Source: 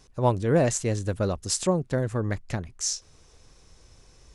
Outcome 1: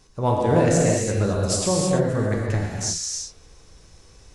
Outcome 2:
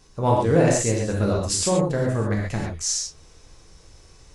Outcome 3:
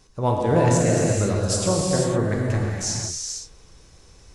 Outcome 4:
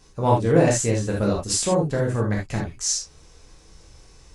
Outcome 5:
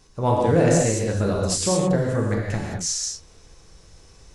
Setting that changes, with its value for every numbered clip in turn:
non-linear reverb, gate: 0.36, 0.16, 0.53, 0.1, 0.24 s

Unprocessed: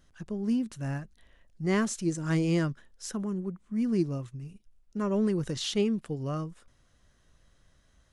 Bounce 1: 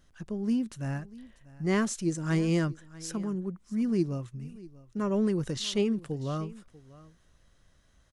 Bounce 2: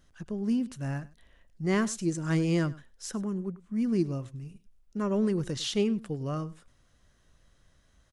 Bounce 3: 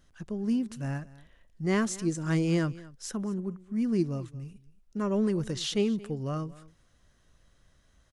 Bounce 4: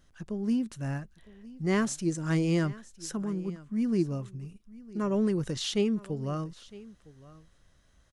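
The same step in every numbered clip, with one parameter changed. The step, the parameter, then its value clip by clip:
echo, time: 0.641, 0.1, 0.227, 0.959 s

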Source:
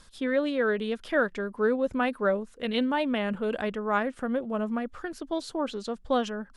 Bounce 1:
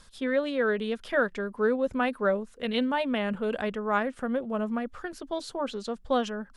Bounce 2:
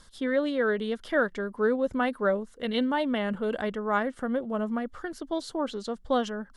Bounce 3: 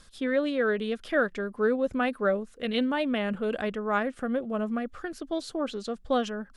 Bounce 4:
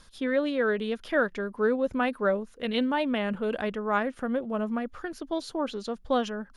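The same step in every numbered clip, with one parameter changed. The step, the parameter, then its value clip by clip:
notch, frequency: 310, 2500, 940, 7900 Hz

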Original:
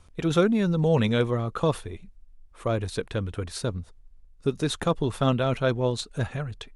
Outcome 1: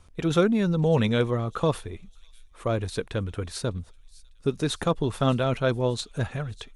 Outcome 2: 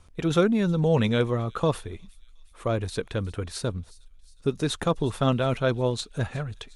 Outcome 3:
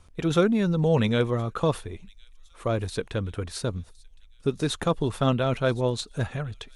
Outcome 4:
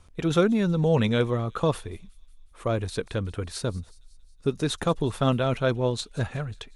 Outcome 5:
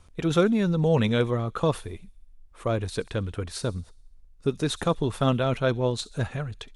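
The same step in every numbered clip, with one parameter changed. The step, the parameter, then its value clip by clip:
thin delay, time: 601, 361, 1063, 183, 67 ms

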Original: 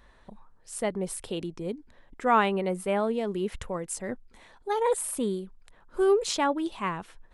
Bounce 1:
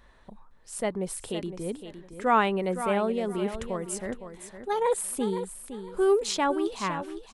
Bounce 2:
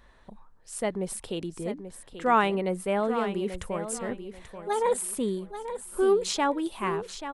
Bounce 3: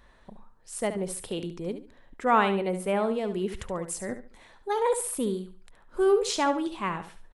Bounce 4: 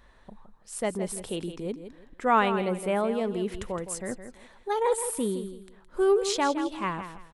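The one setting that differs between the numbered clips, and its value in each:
feedback echo, time: 511, 835, 71, 165 ms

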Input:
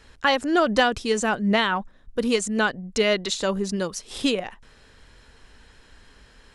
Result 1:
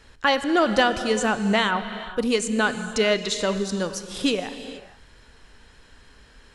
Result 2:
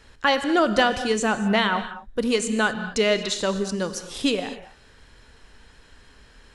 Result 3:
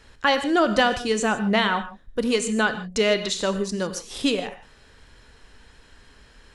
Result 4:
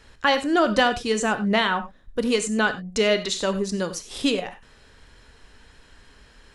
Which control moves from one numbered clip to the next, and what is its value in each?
non-linear reverb, gate: 0.5, 0.27, 0.18, 0.12 s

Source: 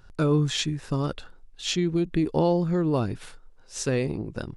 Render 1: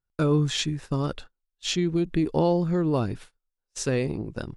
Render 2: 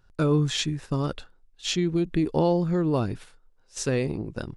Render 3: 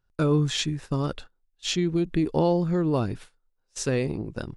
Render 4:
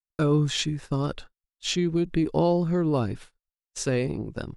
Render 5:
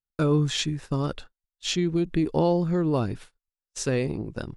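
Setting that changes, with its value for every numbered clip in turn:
gate, range: -34, -9, -22, -60, -47 dB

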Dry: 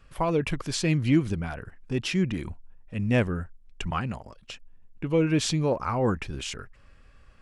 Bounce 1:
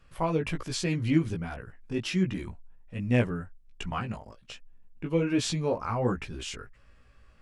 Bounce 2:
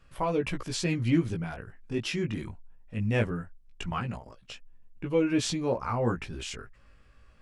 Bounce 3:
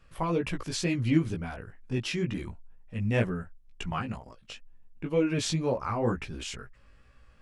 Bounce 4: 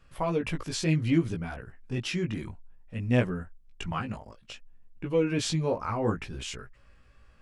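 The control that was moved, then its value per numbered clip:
chorus, rate: 1.3, 0.2, 2.1, 0.6 Hz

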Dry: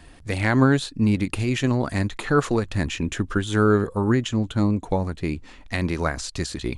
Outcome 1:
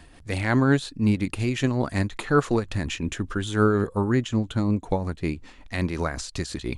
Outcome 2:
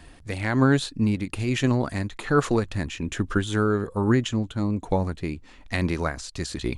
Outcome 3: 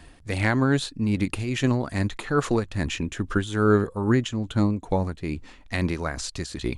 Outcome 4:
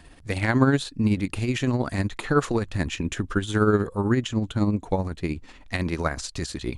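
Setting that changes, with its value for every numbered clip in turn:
tremolo, rate: 5.5, 1.2, 2.4, 16 Hz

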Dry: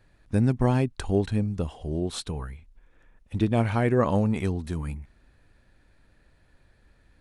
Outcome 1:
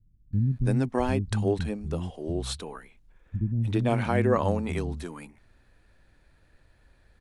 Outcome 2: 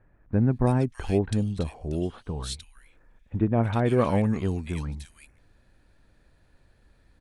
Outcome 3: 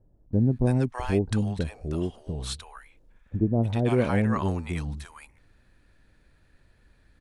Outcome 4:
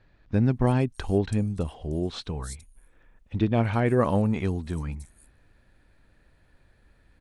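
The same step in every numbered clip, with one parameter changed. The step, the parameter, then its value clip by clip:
bands offset in time, split: 220, 2000, 730, 5800 Hz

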